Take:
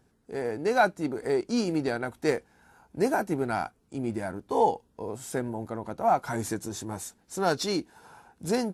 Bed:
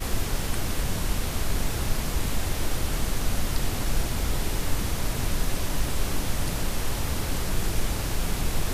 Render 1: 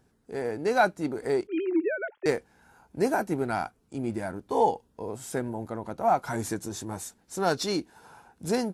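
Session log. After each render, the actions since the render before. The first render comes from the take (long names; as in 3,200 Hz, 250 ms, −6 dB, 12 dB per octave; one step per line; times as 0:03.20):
0:01.47–0:02.26: three sine waves on the formant tracks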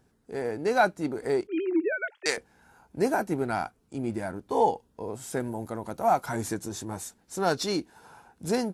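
0:01.92–0:02.37: meter weighting curve ITU-R 468
0:05.40–0:06.26: high-shelf EQ 6,100 Hz +11.5 dB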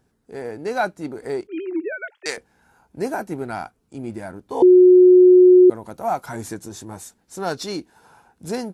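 0:04.62–0:05.70: beep over 364 Hz −6.5 dBFS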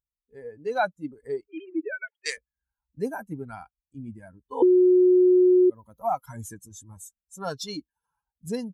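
spectral dynamics exaggerated over time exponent 2
downward compressor, threshold −16 dBFS, peak gain reduction 7 dB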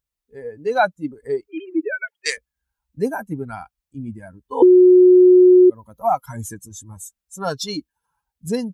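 level +7.5 dB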